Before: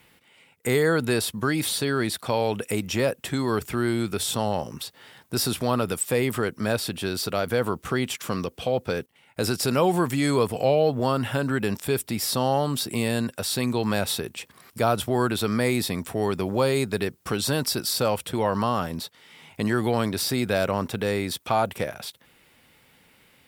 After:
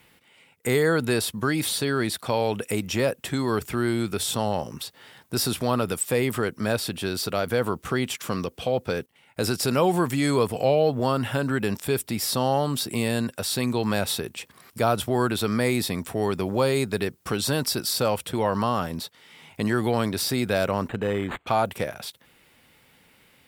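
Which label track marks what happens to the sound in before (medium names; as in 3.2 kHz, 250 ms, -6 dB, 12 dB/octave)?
20.890000	21.470000	decimation joined by straight lines rate divided by 8×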